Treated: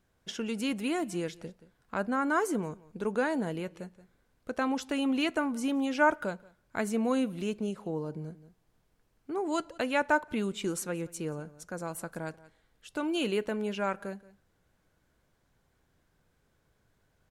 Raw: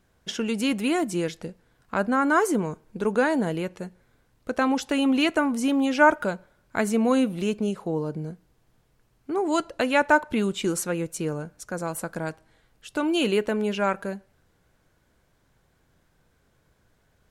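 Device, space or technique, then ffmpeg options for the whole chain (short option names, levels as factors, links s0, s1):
ducked delay: -filter_complex "[0:a]asplit=3[s0][s1][s2];[s1]adelay=177,volume=0.501[s3];[s2]apad=whole_len=771079[s4];[s3][s4]sidechaincompress=threshold=0.01:ratio=8:attack=8.4:release=574[s5];[s0][s5]amix=inputs=2:normalize=0,volume=0.447"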